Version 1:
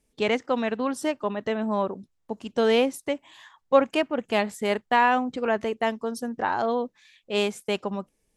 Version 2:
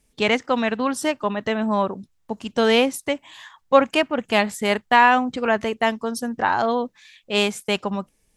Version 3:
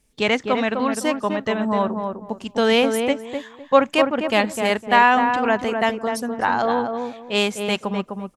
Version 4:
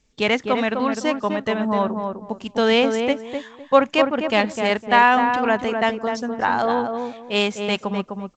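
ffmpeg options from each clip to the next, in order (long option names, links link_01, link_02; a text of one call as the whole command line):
ffmpeg -i in.wav -af "equalizer=frequency=410:width_type=o:width=1.8:gain=-5.5,volume=7.5dB" out.wav
ffmpeg -i in.wav -filter_complex "[0:a]asplit=2[link_01][link_02];[link_02]adelay=254,lowpass=frequency=1300:poles=1,volume=-4.5dB,asplit=2[link_03][link_04];[link_04]adelay=254,lowpass=frequency=1300:poles=1,volume=0.25,asplit=2[link_05][link_06];[link_06]adelay=254,lowpass=frequency=1300:poles=1,volume=0.25[link_07];[link_01][link_03][link_05][link_07]amix=inputs=4:normalize=0" out.wav
ffmpeg -i in.wav -ar 16000 -c:a g722 out.g722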